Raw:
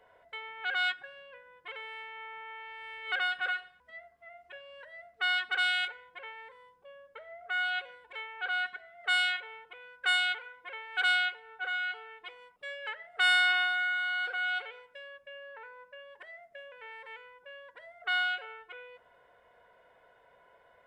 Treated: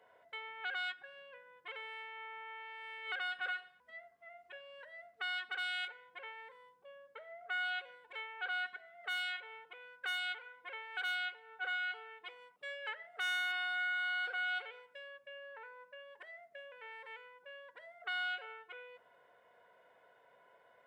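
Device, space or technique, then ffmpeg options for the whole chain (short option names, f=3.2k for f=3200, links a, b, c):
clipper into limiter: -af "asoftclip=type=hard:threshold=-18dB,alimiter=level_in=1dB:limit=-24dB:level=0:latency=1:release=314,volume=-1dB,highpass=140,volume=-3.5dB"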